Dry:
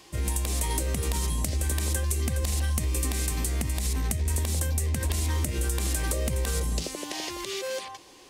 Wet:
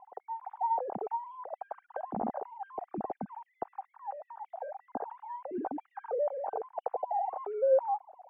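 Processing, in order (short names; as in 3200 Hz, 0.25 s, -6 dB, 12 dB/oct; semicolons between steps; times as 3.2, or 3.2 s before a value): sine-wave speech; in parallel at -6 dB: hard clip -16.5 dBFS, distortion -11 dB; on the sum: ladder low-pass 830 Hz, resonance 75%; gain -4 dB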